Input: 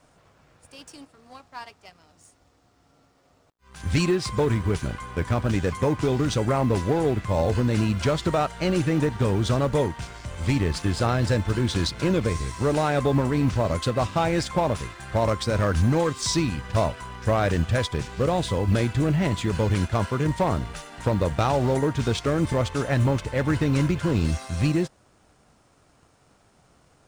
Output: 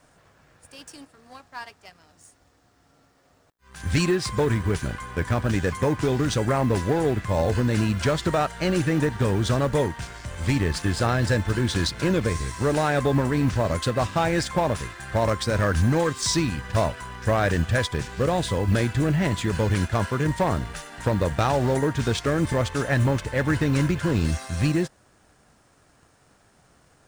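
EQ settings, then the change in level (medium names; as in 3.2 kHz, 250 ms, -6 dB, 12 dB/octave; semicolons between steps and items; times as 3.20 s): peaking EQ 1.7 kHz +6 dB 0.32 oct; treble shelf 8.7 kHz +6 dB; 0.0 dB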